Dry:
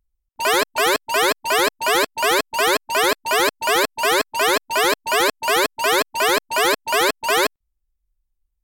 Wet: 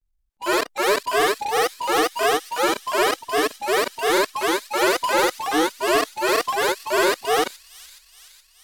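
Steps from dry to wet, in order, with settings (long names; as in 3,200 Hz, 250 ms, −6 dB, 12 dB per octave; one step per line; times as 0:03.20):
granular cloud, grains 20 per second, spray 35 ms, pitch spread up and down by 3 semitones
in parallel at +2 dB: output level in coarse steps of 20 dB
on the sum: transient designer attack −6 dB, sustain +5 dB
harmonic and percussive parts rebalanced percussive −11 dB
soft clipping −9 dBFS, distortion −21 dB
on a send: delay with a high-pass on its return 421 ms, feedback 62%, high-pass 4,300 Hz, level −13 dB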